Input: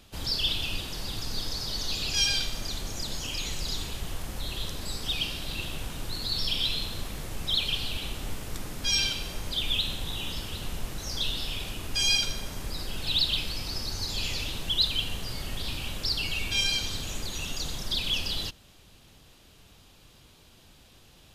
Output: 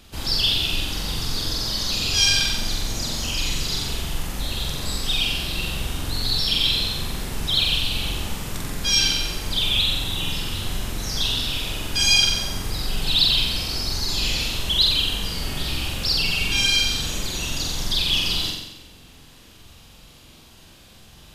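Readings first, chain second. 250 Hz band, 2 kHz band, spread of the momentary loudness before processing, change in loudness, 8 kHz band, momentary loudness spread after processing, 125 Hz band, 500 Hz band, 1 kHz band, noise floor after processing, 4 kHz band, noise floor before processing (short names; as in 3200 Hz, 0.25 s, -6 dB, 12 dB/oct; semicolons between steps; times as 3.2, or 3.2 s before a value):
+8.0 dB, +8.0 dB, 12 LU, +8.0 dB, +8.0 dB, 11 LU, +7.5 dB, +6.5 dB, +7.5 dB, -48 dBFS, +8.0 dB, -56 dBFS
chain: bell 560 Hz -2.5 dB 0.89 oct; flutter echo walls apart 7.7 m, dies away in 0.91 s; gain +5 dB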